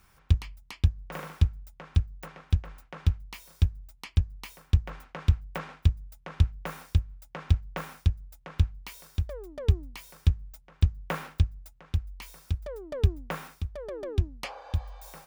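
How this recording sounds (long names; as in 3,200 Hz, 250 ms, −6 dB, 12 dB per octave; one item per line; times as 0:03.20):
background noise floor −61 dBFS
spectral slope −6.5 dB per octave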